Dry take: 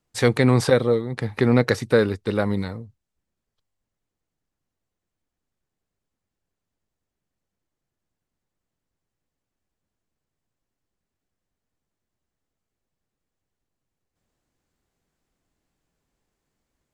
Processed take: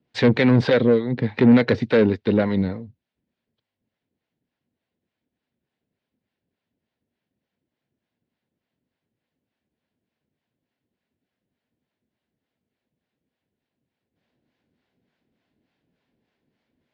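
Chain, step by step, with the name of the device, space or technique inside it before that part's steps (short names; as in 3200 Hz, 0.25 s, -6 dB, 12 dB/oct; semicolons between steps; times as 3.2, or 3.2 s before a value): guitar amplifier with harmonic tremolo (harmonic tremolo 3.4 Hz, depth 70%, crossover 560 Hz; soft clip -19.5 dBFS, distortion -10 dB; speaker cabinet 110–4000 Hz, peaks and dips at 240 Hz +6 dB, 820 Hz -3 dB, 1200 Hz -9 dB); gain +8.5 dB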